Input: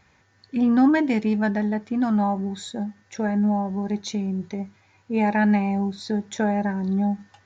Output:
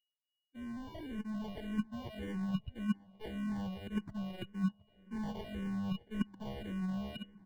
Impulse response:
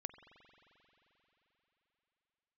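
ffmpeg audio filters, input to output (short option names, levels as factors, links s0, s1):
-filter_complex "[0:a]asoftclip=type=tanh:threshold=0.112,afftfilt=real='re*gte(hypot(re,im),0.0631)':imag='im*gte(hypot(re,im),0.0631)':win_size=1024:overlap=0.75,equalizer=f=2100:t=o:w=1:g=7.5,acrusher=samples=34:mix=1:aa=0.000001,asoftclip=type=hard:threshold=0.0237,aeval=exprs='val(0)+0.00355*sin(2*PI*2900*n/s)':c=same,areverse,acompressor=threshold=0.00794:ratio=12,areverse,agate=range=0.01:threshold=0.00794:ratio=16:detection=peak,asplit=2[s0][s1];[s1]adelay=720,lowpass=f=2400:p=1,volume=0.0891,asplit=2[s2][s3];[s3]adelay=720,lowpass=f=2400:p=1,volume=0.42,asplit=2[s4][s5];[s5]adelay=720,lowpass=f=2400:p=1,volume=0.42[s6];[s0][s2][s4][s6]amix=inputs=4:normalize=0,dynaudnorm=f=340:g=7:m=2.11,bass=f=250:g=8,treble=f=4000:g=-11,asplit=2[s7][s8];[s8]afreqshift=-1.8[s9];[s7][s9]amix=inputs=2:normalize=1,volume=2.37"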